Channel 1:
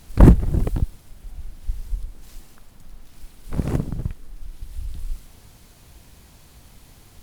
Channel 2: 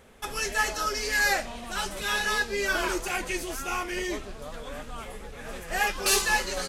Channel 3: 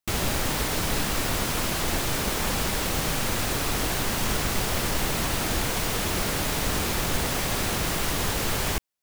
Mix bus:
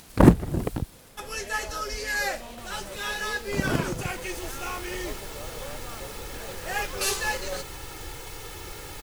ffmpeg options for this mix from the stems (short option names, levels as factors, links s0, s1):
-filter_complex "[0:a]highpass=f=280:p=1,volume=1.33[s0];[1:a]equalizer=f=520:t=o:w=0.28:g=7.5,adelay=950,volume=0.631[s1];[2:a]aecho=1:1:2.3:0.75,adelay=2500,volume=0.178,afade=t=in:st=3.95:d=0.48:silence=0.446684[s2];[s0][s1][s2]amix=inputs=3:normalize=0,acompressor=mode=upward:threshold=0.00398:ratio=2.5"